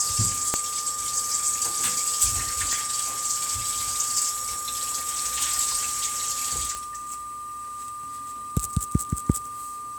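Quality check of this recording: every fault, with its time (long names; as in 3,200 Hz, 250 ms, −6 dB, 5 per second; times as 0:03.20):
whistle 1,200 Hz −33 dBFS
0:00.54: click −7 dBFS
0:02.73: click
0:06.75: click −16 dBFS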